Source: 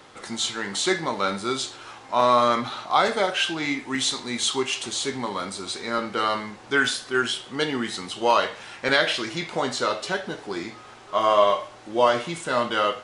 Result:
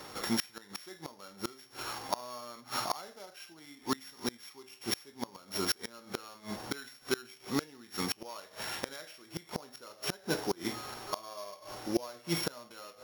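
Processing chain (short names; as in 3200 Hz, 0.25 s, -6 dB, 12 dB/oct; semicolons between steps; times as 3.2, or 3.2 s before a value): sample sorter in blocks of 8 samples; de-hum 128.8 Hz, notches 6; flipped gate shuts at -19 dBFS, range -28 dB; gain +2 dB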